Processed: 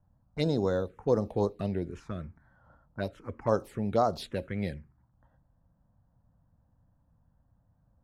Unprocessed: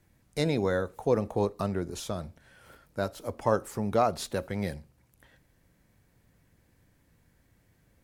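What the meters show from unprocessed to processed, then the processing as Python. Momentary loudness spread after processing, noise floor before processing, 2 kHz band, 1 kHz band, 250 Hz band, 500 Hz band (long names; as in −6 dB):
13 LU, −67 dBFS, −5.5 dB, −2.5 dB, −0.5 dB, −1.0 dB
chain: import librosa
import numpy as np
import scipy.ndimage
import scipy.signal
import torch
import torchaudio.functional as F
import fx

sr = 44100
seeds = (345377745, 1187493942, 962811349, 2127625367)

y = fx.env_lowpass(x, sr, base_hz=920.0, full_db=-24.0)
y = fx.env_phaser(y, sr, low_hz=380.0, high_hz=2500.0, full_db=-22.0)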